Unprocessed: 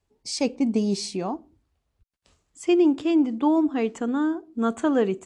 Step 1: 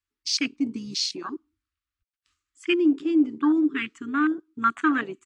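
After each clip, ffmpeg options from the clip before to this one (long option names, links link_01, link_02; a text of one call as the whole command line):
ffmpeg -i in.wav -af "firequalizer=gain_entry='entry(100,0);entry(160,-17);entry(300,4);entry(550,-28);entry(1200,13);entry(7600,9)':delay=0.05:min_phase=1,afwtdn=0.0562,volume=-2dB" out.wav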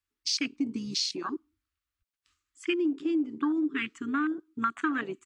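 ffmpeg -i in.wav -af "acompressor=threshold=-25dB:ratio=6" out.wav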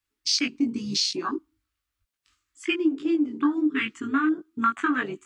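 ffmpeg -i in.wav -af "flanger=delay=18.5:depth=2.5:speed=0.74,volume=8dB" out.wav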